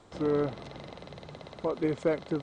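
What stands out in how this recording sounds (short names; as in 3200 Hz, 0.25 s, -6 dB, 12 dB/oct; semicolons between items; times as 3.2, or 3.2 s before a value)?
noise floor -54 dBFS; spectral tilt -5.5 dB/oct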